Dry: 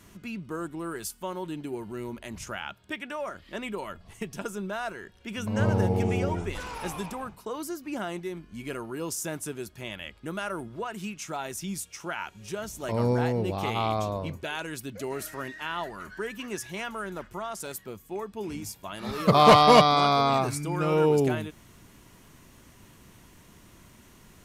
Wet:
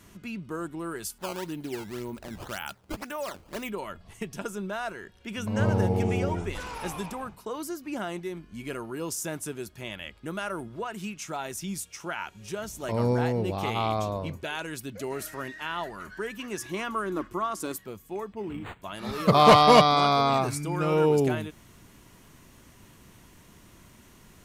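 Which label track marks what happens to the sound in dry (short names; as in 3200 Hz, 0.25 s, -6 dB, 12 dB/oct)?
1.180000	3.710000	decimation with a swept rate 14×, swing 160% 1.9 Hz
16.590000	17.770000	small resonant body resonances 310/1100 Hz, height 15 dB
18.330000	18.820000	decimation joined by straight lines rate divided by 8×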